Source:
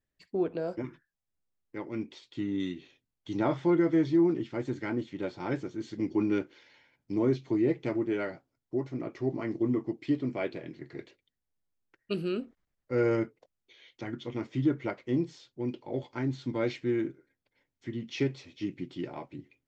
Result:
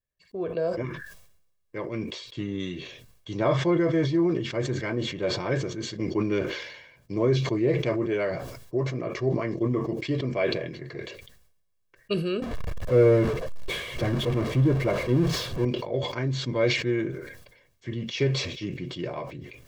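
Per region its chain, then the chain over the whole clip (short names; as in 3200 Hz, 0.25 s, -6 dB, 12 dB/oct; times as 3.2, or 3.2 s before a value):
12.42–15.65 zero-crossing step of -34 dBFS + LPF 2600 Hz 6 dB/oct + low shelf 490 Hz +7 dB
whole clip: AGC gain up to 13 dB; comb 1.8 ms, depth 60%; sustainer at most 56 dB/s; gain -8 dB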